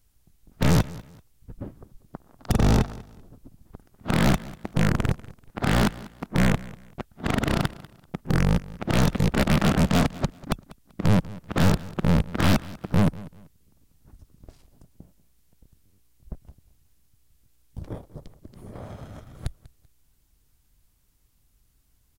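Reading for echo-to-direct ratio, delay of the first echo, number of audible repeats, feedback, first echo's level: −19.0 dB, 193 ms, 2, 27%, −19.5 dB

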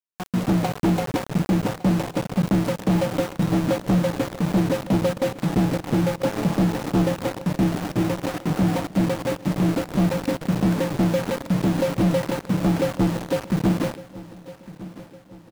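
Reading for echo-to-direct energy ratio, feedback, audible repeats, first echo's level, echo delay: −17.0 dB, 48%, 3, −18.0 dB, 1,158 ms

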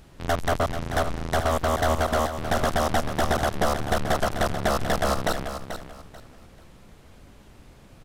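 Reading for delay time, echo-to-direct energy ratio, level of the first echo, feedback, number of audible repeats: 437 ms, −9.0 dB, −9.5 dB, 25%, 3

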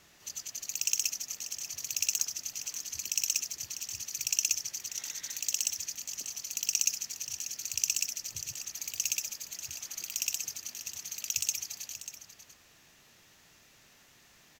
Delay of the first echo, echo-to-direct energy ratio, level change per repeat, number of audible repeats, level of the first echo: 590 ms, −12.0 dB, repeats not evenly spaced, 1, −12.0 dB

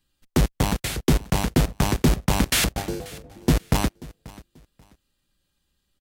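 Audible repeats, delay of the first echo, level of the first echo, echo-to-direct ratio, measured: 2, 536 ms, −21.0 dB, −20.5 dB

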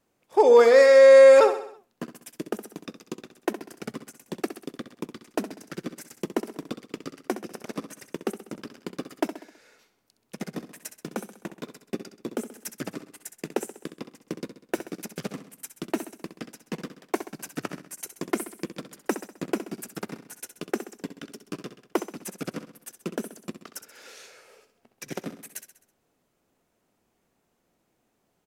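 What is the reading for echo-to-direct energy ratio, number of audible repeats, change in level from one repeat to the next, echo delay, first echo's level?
−9.5 dB, 5, −6.0 dB, 65 ms, −11.0 dB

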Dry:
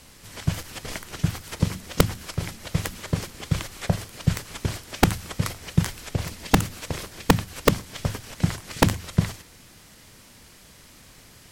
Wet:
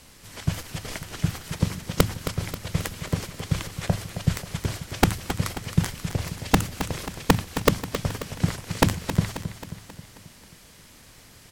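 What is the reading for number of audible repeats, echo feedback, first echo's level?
5, 54%, −10.5 dB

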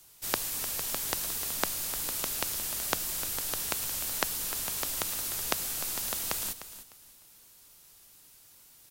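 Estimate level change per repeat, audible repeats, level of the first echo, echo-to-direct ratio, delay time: −13.0 dB, 2, −13.0 dB, −13.0 dB, 302 ms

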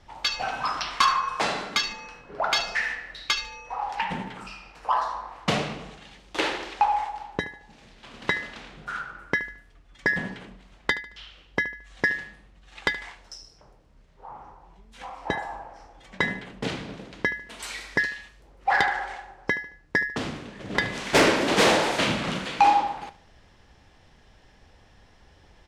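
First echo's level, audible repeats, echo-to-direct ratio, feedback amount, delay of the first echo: −16.0 dB, 3, −15.5 dB, 35%, 74 ms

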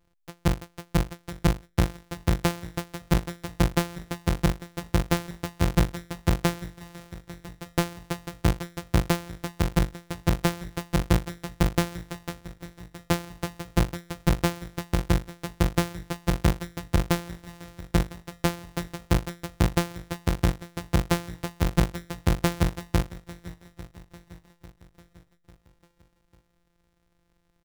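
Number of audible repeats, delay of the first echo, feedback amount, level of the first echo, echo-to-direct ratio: 3, 847 ms, 50%, −19.0 dB, −18.0 dB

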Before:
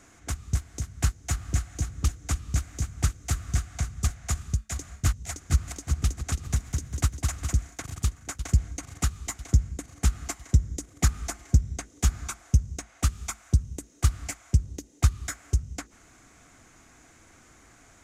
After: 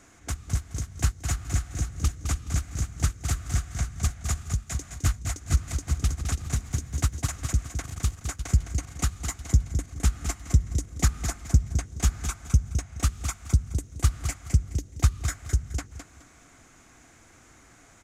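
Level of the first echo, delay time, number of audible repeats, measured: −8.0 dB, 211 ms, 3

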